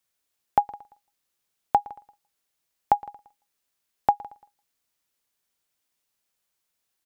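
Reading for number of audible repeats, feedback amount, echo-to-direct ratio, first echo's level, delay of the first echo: 2, 41%, -21.0 dB, -22.0 dB, 114 ms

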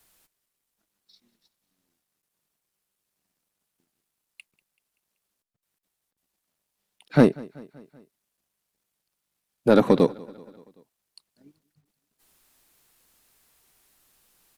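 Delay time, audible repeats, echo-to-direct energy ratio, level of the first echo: 191 ms, 3, -21.5 dB, -23.0 dB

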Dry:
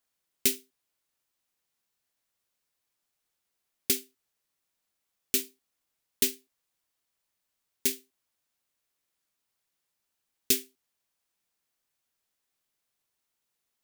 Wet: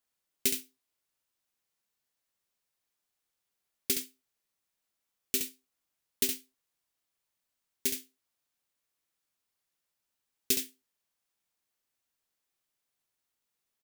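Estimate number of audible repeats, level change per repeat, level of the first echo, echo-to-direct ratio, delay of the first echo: 1, no regular repeats, -6.5 dB, -6.5 dB, 68 ms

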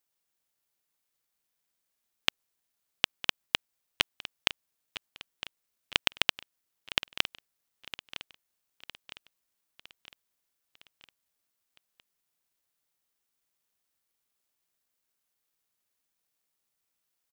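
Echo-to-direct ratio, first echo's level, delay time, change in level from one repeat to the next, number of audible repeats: -13.0 dB, -14.5 dB, 959 ms, -5.5 dB, 4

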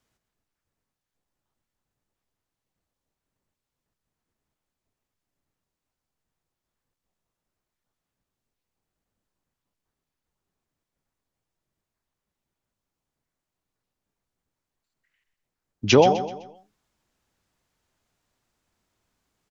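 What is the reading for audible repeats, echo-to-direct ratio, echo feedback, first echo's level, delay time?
3, -10.5 dB, 39%, -11.0 dB, 127 ms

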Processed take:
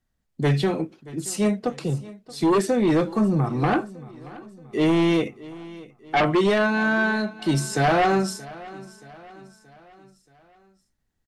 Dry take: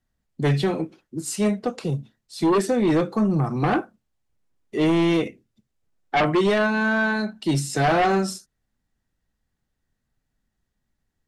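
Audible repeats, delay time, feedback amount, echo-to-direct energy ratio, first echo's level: 3, 627 ms, 50%, -18.5 dB, -19.5 dB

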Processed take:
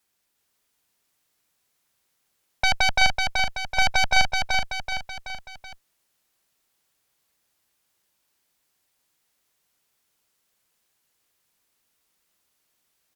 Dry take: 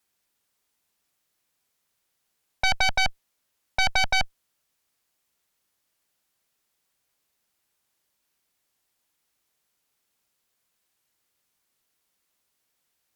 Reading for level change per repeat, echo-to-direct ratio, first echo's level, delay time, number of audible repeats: -6.0 dB, -2.5 dB, -4.0 dB, 379 ms, 4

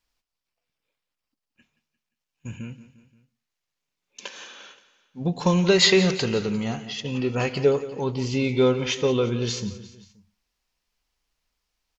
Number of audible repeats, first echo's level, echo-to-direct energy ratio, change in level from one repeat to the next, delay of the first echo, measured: 3, -15.5 dB, -14.0 dB, -5.0 dB, 175 ms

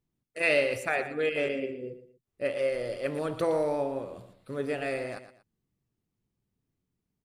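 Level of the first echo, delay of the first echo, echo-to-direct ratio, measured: -12.0 dB, 118 ms, -11.5 dB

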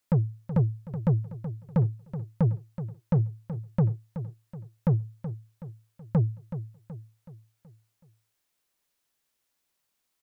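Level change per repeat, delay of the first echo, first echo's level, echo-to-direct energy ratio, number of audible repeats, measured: -6.5 dB, 375 ms, -11.5 dB, -10.5 dB, 4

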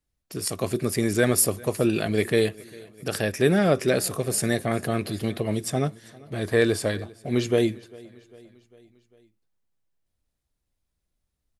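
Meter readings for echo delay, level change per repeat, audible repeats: 399 ms, -5.0 dB, 3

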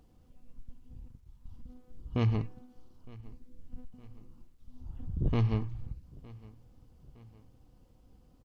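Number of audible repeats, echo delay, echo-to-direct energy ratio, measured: 2, 912 ms, -21.0 dB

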